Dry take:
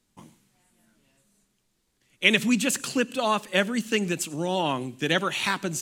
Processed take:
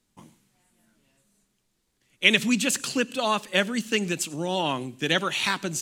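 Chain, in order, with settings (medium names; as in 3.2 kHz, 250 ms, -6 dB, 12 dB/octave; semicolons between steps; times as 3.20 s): dynamic bell 4.4 kHz, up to +4 dB, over -39 dBFS, Q 0.71; trim -1 dB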